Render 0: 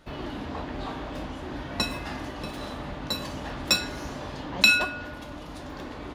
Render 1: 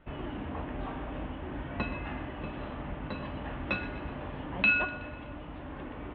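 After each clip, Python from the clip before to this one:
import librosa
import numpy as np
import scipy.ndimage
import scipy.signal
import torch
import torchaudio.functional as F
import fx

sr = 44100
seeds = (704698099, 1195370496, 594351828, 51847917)

y = scipy.signal.sosfilt(scipy.signal.butter(8, 3100.0, 'lowpass', fs=sr, output='sos'), x)
y = fx.low_shelf(y, sr, hz=160.0, db=4.5)
y = fx.echo_feedback(y, sr, ms=124, feedback_pct=55, wet_db=-16)
y = y * 10.0 ** (-4.5 / 20.0)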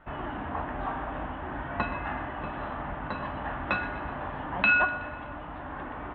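y = fx.band_shelf(x, sr, hz=1100.0, db=9.0, octaves=1.7)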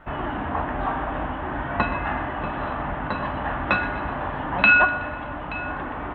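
y = x + 10.0 ** (-18.0 / 20.0) * np.pad(x, (int(877 * sr / 1000.0), 0))[:len(x)]
y = y * 10.0 ** (7.0 / 20.0)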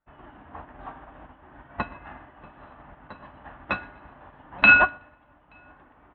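y = fx.upward_expand(x, sr, threshold_db=-38.0, expansion=2.5)
y = y * 10.0 ** (2.5 / 20.0)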